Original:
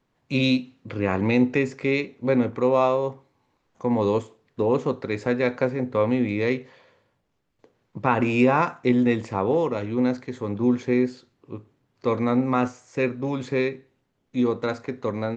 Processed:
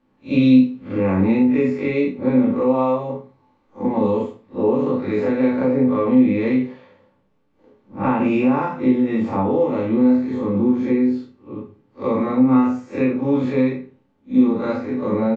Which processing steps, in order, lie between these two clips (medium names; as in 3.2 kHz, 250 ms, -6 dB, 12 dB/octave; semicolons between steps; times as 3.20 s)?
spectral blur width 101 ms; low-pass 1.6 kHz 6 dB/octave; bass shelf 97 Hz -9.5 dB; hum notches 60/120/180/240 Hz; compression 5:1, threshold -27 dBFS, peak gain reduction 10 dB; doubling 31 ms -7 dB; reverberation RT60 0.20 s, pre-delay 3 ms, DRR -1 dB; trim +5.5 dB